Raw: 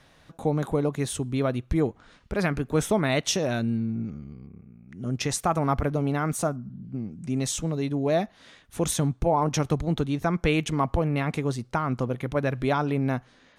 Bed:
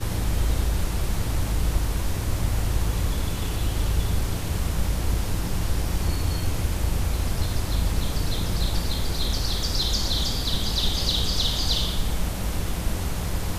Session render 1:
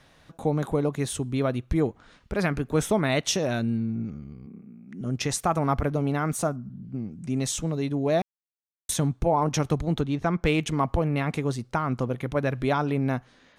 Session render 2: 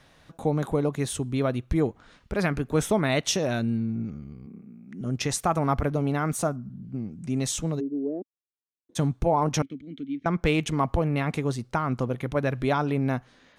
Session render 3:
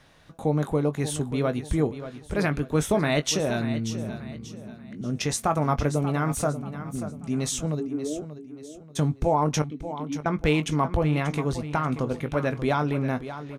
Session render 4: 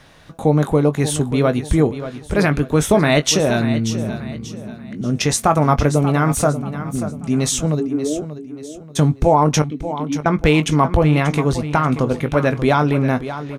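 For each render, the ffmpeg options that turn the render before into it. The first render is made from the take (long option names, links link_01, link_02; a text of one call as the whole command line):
ffmpeg -i in.wav -filter_complex "[0:a]asettb=1/sr,asplit=3[link_01][link_02][link_03];[link_01]atrim=end=4.464[link_04];[link_02]atrim=start=4.46:end=5.01,asetpts=PTS-STARTPTS,afade=type=in:duration=0.004:curve=qsin,afade=type=out:start_time=0.546:duration=0.004:curve=qsin,highpass=frequency=220:width_type=q:width=2.1[link_05];[link_03]atrim=start=5.006[link_06];[link_04][link_05]acrossfade=duration=0.004:curve1=hsin:curve2=qsin[link_07];[link_07][link_06]acrossfade=duration=0.004:curve1=qsin:curve2=hsin,asettb=1/sr,asplit=3[link_08][link_09][link_10];[link_08]atrim=end=10.014[link_11];[link_09]atrim=start=10.01:end=10.61,asetpts=PTS-STARTPTS,afade=type=in:duration=0.004:curve=qsin,afade=type=out:start_time=0.596:duration=0.004:curve=qsin,adynamicsmooth=sensitivity=4.5:basefreq=5500[link_12];[link_10]atrim=start=10.606[link_13];[link_11][link_12]acrossfade=duration=0.004:curve1=hsin:curve2=qsin[link_14];[link_14][link_13]acrossfade=duration=0.004:curve1=qsin:curve2=hsin,asplit=3[link_15][link_16][link_17];[link_15]atrim=end=8.22,asetpts=PTS-STARTPTS,afade=type=out:start_time=8.216:duration=0.004:curve=hsin[link_18];[link_16]atrim=start=8.22:end=8.89,asetpts=PTS-STARTPTS,volume=0[link_19];[link_17]atrim=start=8.89,asetpts=PTS-STARTPTS,afade=type=in:duration=0.004:curve=hsin[link_20];[link_18][link_19][link_20]concat=n=3:v=0:a=1" out.wav
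ffmpeg -i in.wav -filter_complex "[0:a]asplit=3[link_01][link_02][link_03];[link_01]afade=type=out:start_time=7.79:duration=0.02[link_04];[link_02]asuperpass=centerf=330:order=4:qfactor=1.9,afade=type=in:start_time=7.79:duration=0.02,afade=type=out:start_time=8.95:duration=0.02[link_05];[link_03]afade=type=in:start_time=8.95:duration=0.02[link_06];[link_04][link_05][link_06]amix=inputs=3:normalize=0,asettb=1/sr,asplit=3[link_07][link_08][link_09];[link_07]atrim=end=9.624[link_10];[link_08]atrim=start=9.62:end=10.26,asetpts=PTS-STARTPTS,afade=type=in:duration=0.004:curve=qsin,afade=type=out:start_time=0.636:duration=0.004:curve=qsin,asplit=3[link_11][link_12][link_13];[link_11]bandpass=frequency=270:width_type=q:width=8,volume=0dB[link_14];[link_12]bandpass=frequency=2290:width_type=q:width=8,volume=-6dB[link_15];[link_13]bandpass=frequency=3010:width_type=q:width=8,volume=-9dB[link_16];[link_14][link_15][link_16]amix=inputs=3:normalize=0[link_17];[link_09]atrim=start=10.256[link_18];[link_10][link_17]acrossfade=duration=0.004:curve1=hsin:curve2=qsin[link_19];[link_19][link_18]acrossfade=duration=0.004:curve1=qsin:curve2=hsin" out.wav
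ffmpeg -i in.wav -filter_complex "[0:a]asplit=2[link_01][link_02];[link_02]adelay=20,volume=-11dB[link_03];[link_01][link_03]amix=inputs=2:normalize=0,aecho=1:1:585|1170|1755|2340:0.251|0.0904|0.0326|0.0117" out.wav
ffmpeg -i in.wav -af "volume=9dB,alimiter=limit=-3dB:level=0:latency=1" out.wav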